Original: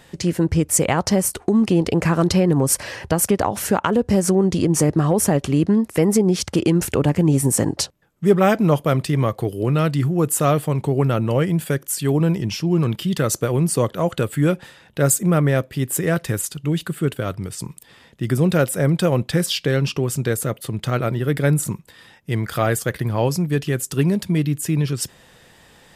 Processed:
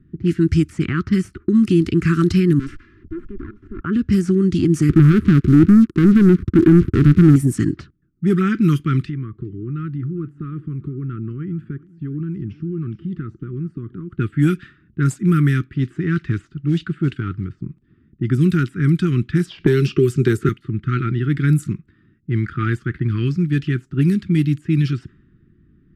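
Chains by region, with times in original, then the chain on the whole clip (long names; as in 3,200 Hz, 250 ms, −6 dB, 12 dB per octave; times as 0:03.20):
0:02.59–0:03.81: lower of the sound and its delayed copy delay 2.9 ms + output level in coarse steps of 14 dB
0:04.89–0:07.36: spike at every zero crossing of −22.5 dBFS + elliptic low-pass filter 920 Hz, stop band 60 dB + leveller curve on the samples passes 3
0:09.03–0:14.19: downward compressor 4 to 1, threshold −26 dBFS + single-tap delay 406 ms −21.5 dB
0:15.75–0:17.62: low-pass filter 6,300 Hz + high-shelf EQ 3,900 Hz +8 dB + log-companded quantiser 6 bits
0:19.58–0:20.49: parametric band 400 Hz +14.5 dB 0.28 octaves + multiband upward and downward compressor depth 100%
whole clip: elliptic band-stop filter 350–1,300 Hz, stop band 40 dB; de-essing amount 90%; low-pass that shuts in the quiet parts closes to 400 Hz, open at −14.5 dBFS; level +3.5 dB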